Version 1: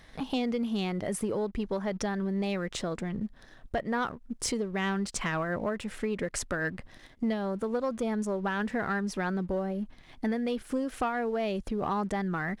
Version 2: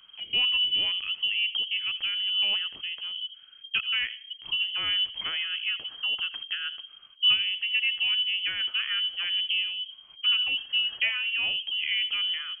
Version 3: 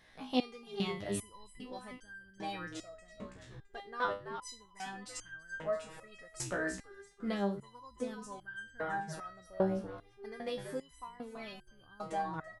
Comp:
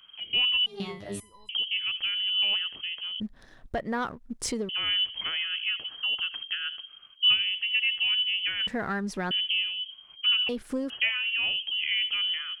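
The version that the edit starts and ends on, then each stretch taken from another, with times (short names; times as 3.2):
2
0.66–1.49 from 3
3.2–4.69 from 1
8.67–9.31 from 1
10.49–10.9 from 1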